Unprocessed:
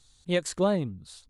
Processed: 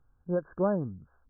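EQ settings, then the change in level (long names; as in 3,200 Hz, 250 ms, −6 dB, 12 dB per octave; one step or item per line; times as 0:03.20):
linear-phase brick-wall low-pass 1,700 Hz
−2.5 dB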